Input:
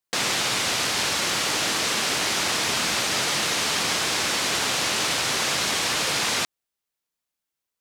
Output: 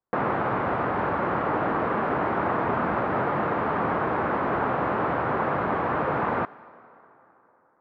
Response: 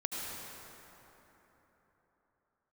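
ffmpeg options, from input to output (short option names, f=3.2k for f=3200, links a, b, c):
-filter_complex "[0:a]lowpass=f=1.3k:w=0.5412,lowpass=f=1.3k:w=1.3066,asplit=2[a][b];[b]aemphasis=mode=production:type=bsi[c];[1:a]atrim=start_sample=2205[d];[c][d]afir=irnorm=-1:irlink=0,volume=-22.5dB[e];[a][e]amix=inputs=2:normalize=0,volume=5.5dB"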